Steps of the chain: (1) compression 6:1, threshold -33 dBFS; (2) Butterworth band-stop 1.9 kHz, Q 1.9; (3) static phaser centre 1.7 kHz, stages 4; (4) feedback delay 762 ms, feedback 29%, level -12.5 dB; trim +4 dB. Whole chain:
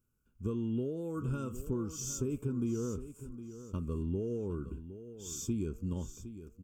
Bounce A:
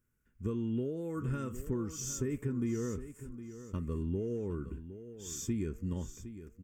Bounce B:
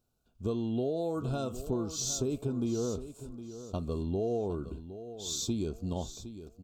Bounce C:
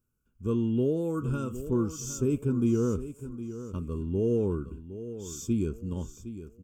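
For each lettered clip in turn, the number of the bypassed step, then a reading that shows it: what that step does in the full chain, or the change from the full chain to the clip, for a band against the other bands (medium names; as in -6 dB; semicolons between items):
2, 2 kHz band +5.0 dB; 3, 4 kHz band +9.0 dB; 1, mean gain reduction 4.5 dB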